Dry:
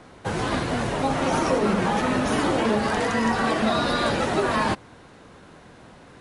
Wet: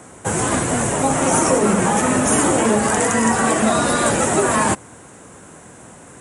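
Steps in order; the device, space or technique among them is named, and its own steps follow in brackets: budget condenser microphone (HPF 66 Hz; resonant high shelf 5900 Hz +10.5 dB, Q 3); gain +5.5 dB

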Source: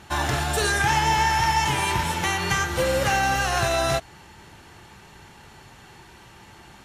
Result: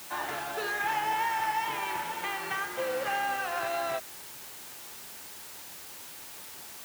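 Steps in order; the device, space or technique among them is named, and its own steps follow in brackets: wax cylinder (BPF 380–2700 Hz; wow and flutter; white noise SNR 11 dB); HPF 55 Hz; gain -7.5 dB

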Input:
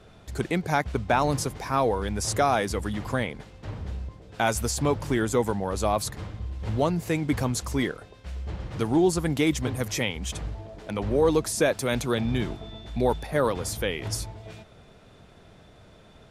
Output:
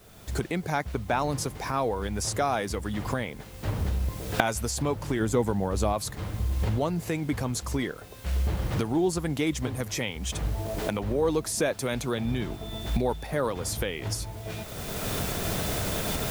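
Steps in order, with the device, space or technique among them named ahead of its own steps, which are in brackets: cheap recorder with automatic gain (white noise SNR 29 dB; recorder AGC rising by 25 dB/s); 5.2–5.93 low shelf 400 Hz +6 dB; gain -4 dB

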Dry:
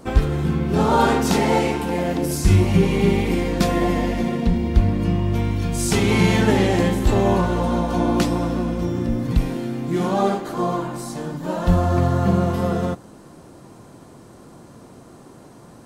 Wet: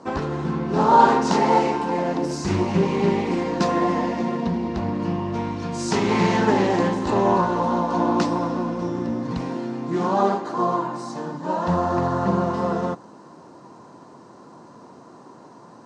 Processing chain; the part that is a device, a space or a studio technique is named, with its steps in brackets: full-range speaker at full volume (Doppler distortion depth 0.33 ms; speaker cabinet 180–6600 Hz, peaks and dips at 970 Hz +9 dB, 2300 Hz -5 dB, 3300 Hz -6 dB); gain -1 dB

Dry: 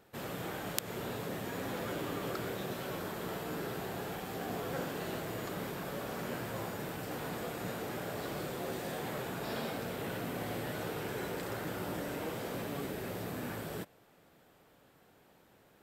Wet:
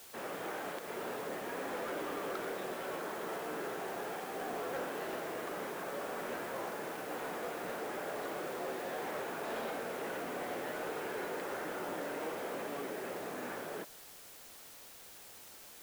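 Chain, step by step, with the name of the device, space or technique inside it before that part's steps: aircraft radio (BPF 360–2400 Hz; hard clip -35 dBFS, distortion -21 dB; white noise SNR 13 dB); gain +2 dB

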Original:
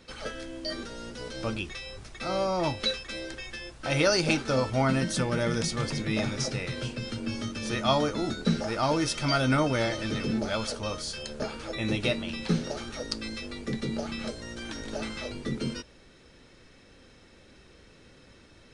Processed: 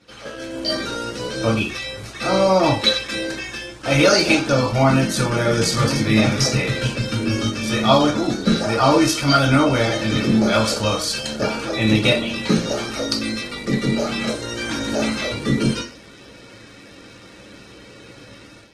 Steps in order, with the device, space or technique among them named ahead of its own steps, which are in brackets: far-field microphone of a smart speaker (reverb RT60 0.35 s, pre-delay 3 ms, DRR -2 dB; HPF 97 Hz 12 dB/oct; AGC gain up to 10.5 dB; gain -1 dB; Opus 16 kbps 48000 Hz)

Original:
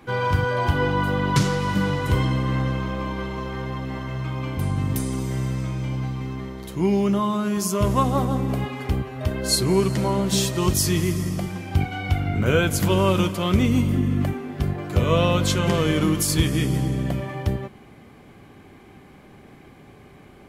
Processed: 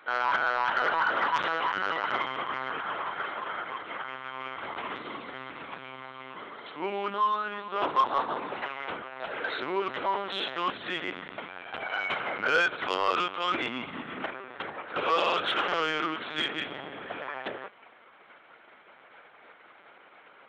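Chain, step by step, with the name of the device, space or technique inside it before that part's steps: talking toy (LPC vocoder at 8 kHz pitch kept; HPF 690 Hz 12 dB/oct; bell 1400 Hz +7 dB 0.52 oct; soft clip -15.5 dBFS, distortion -17 dB)

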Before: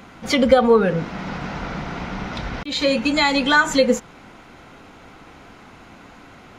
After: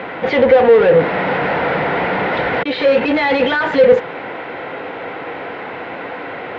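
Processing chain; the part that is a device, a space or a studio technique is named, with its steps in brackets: overdrive pedal into a guitar cabinet (overdrive pedal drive 34 dB, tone 1100 Hz, clips at -1.5 dBFS; speaker cabinet 83–3700 Hz, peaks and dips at 220 Hz -7 dB, 490 Hz +8 dB, 1200 Hz -6 dB, 1900 Hz +5 dB); gain -4.5 dB

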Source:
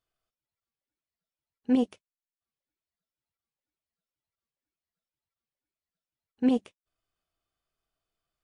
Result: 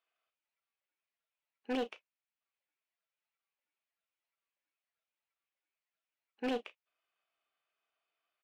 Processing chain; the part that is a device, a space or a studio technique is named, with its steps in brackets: megaphone (BPF 610–3100 Hz; bell 2500 Hz +6.5 dB 0.56 oct; hard clip -31.5 dBFS, distortion -13 dB; doubler 34 ms -13.5 dB); gain +2 dB

